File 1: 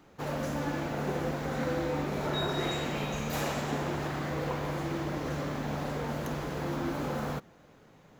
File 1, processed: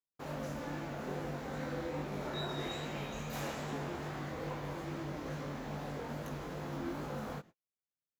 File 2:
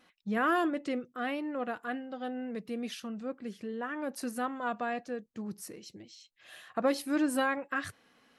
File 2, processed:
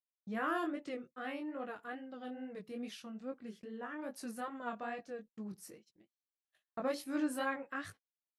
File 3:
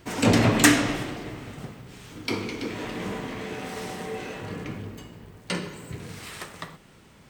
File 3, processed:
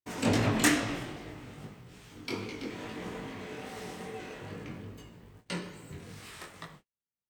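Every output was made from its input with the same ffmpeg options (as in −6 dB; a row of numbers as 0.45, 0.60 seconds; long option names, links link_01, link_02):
-af "flanger=delay=18.5:depth=5:speed=2.4,agate=range=-45dB:threshold=-49dB:ratio=16:detection=peak,volume=-4.5dB"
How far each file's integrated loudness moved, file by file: −7.5, −7.5, −7.5 LU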